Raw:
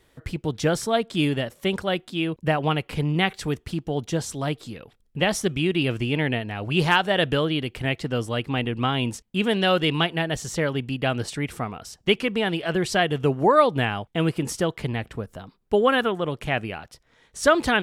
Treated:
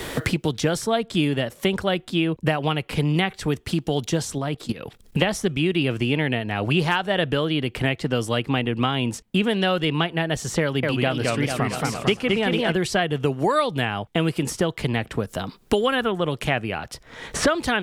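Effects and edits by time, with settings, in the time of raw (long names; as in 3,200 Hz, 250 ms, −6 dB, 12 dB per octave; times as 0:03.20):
0:04.38–0:05.22: output level in coarse steps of 17 dB
0:10.61–0:12.72: feedback echo with a swinging delay time 223 ms, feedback 48%, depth 197 cents, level −3 dB
whole clip: multiband upward and downward compressor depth 100%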